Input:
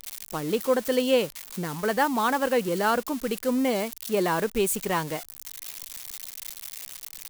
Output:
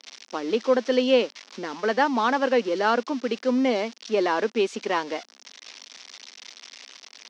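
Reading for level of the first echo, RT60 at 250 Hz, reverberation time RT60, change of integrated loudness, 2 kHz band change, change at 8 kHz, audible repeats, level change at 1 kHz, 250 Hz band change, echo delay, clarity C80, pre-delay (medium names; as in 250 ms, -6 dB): no echo, no reverb, no reverb, +2.5 dB, +2.0 dB, -9.5 dB, no echo, +1.5 dB, +1.5 dB, no echo, no reverb, no reverb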